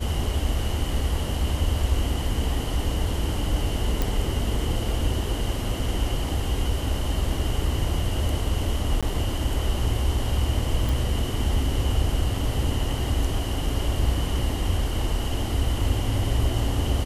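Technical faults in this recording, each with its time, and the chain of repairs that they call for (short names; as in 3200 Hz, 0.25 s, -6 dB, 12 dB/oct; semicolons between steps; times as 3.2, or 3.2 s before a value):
4.02 pop
9.01–9.03 gap 16 ms
10.89 pop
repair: de-click; interpolate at 9.01, 16 ms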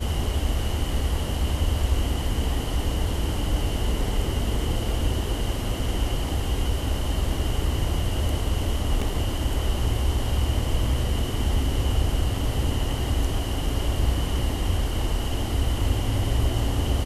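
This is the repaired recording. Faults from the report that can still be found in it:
none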